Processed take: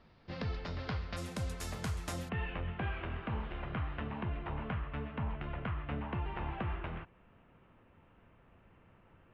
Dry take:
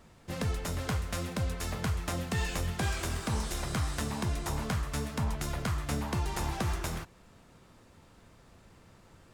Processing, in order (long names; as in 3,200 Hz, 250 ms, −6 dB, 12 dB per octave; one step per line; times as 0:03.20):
elliptic low-pass filter 4,800 Hz, stop band 60 dB, from 0:01.16 12,000 Hz, from 0:02.28 2,900 Hz
level −4.5 dB